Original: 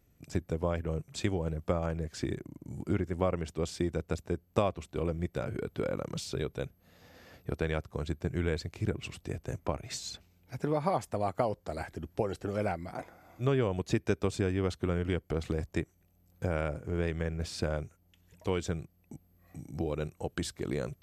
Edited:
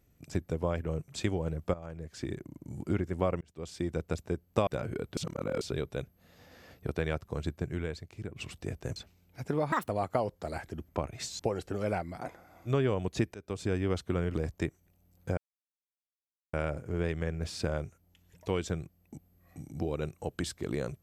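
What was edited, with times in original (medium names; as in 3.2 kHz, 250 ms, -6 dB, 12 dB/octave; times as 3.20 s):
1.74–2.54 s: fade in, from -15 dB
3.41–3.96 s: fade in
4.67–5.30 s: delete
5.80–6.24 s: reverse
8.15–8.99 s: fade out quadratic, to -9 dB
9.59–10.10 s: move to 12.13 s
10.86–11.13 s: speed 165%
14.08–14.48 s: fade in, from -23 dB
15.08–15.49 s: delete
16.52 s: insert silence 1.16 s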